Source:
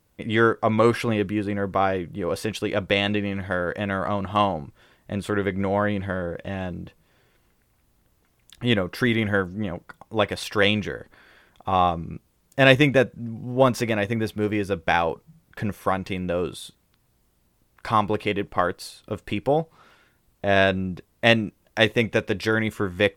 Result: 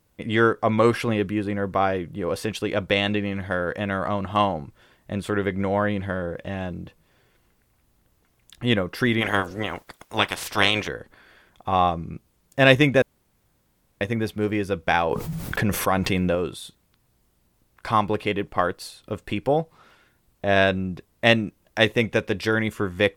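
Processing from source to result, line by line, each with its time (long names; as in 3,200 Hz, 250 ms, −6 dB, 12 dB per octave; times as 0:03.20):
0:09.20–0:10.87: ceiling on every frequency bin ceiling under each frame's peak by 22 dB
0:13.02–0:14.01: fill with room tone
0:15.11–0:16.35: envelope flattener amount 70%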